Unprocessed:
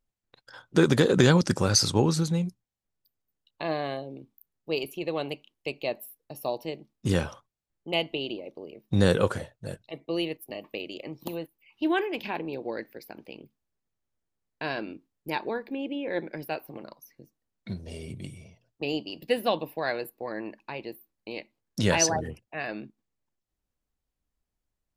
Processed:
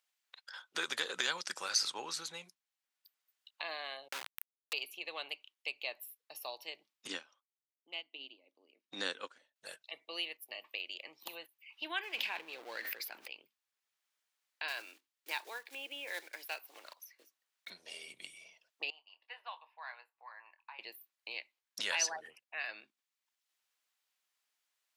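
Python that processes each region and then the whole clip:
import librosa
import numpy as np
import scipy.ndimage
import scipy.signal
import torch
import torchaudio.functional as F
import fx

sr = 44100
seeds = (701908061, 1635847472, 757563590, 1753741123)

y = fx.chain(x, sr, fx.dispersion(late='lows', ms=49.0, hz=1100.0),
    fx.quant_companded(bits=2),
    fx.pre_swell(db_per_s=26.0), at=(4.08, 4.73))
y = fx.chain(y, sr, fx.lowpass(hz=7700.0, slope=24),
    fx.peak_eq(hz=270.0, db=15.0, octaves=0.59),
    fx.upward_expand(threshold_db=-28.0, expansion=2.5), at=(7.07, 9.56))
y = fx.chain(y, sr, fx.law_mismatch(coded='mu'),
    fx.peak_eq(hz=110.0, db=3.5, octaves=2.1),
    fx.sustainer(db_per_s=25.0), at=(12.03, 13.28))
y = fx.chain(y, sr, fx.block_float(bits=5),
    fx.highpass(hz=250.0, slope=24), at=(14.68, 17.71))
y = fx.chain(y, sr, fx.ladder_bandpass(hz=1100.0, resonance_pct=55),
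    fx.doubler(ms=25.0, db=-11), at=(18.9, 20.79))
y = scipy.signal.sosfilt(scipy.signal.butter(2, 1100.0, 'highpass', fs=sr, output='sos'), y)
y = fx.peak_eq(y, sr, hz=3100.0, db=4.5, octaves=1.8)
y = fx.band_squash(y, sr, depth_pct=40)
y = y * 10.0 ** (-6.0 / 20.0)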